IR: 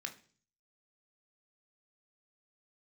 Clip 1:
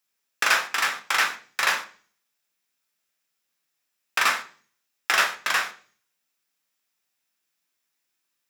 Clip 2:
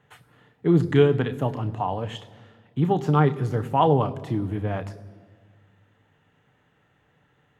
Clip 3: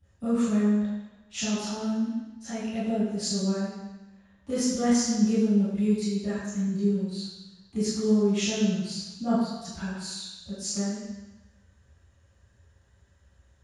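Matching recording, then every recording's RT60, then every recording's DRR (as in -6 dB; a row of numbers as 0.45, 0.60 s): 1; 0.45, 1.7, 1.1 s; 4.5, 9.5, -18.0 dB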